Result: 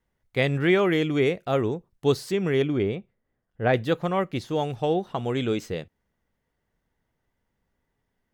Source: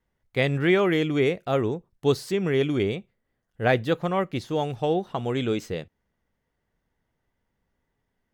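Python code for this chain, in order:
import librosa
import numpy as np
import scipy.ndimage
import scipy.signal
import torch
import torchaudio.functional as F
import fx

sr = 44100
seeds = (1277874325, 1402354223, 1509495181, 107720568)

y = fx.lowpass(x, sr, hz=1800.0, slope=6, at=(2.62, 3.74))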